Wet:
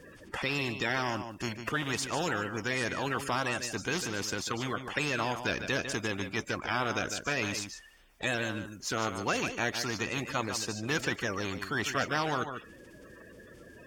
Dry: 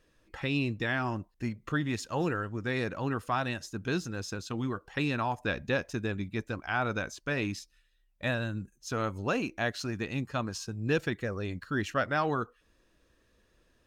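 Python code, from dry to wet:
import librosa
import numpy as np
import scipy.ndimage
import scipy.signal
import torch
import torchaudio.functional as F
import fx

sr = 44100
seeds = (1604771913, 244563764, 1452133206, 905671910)

y = fx.spec_quant(x, sr, step_db=30)
y = fx.highpass(y, sr, hz=130.0, slope=6)
y = fx.high_shelf(y, sr, hz=6300.0, db=-8.0)
y = fx.notch(y, sr, hz=4000.0, q=8.0)
y = y + 10.0 ** (-15.5 / 20.0) * np.pad(y, (int(149 * sr / 1000.0), 0))[:len(y)]
y = fx.spectral_comp(y, sr, ratio=2.0)
y = y * librosa.db_to_amplitude(1.5)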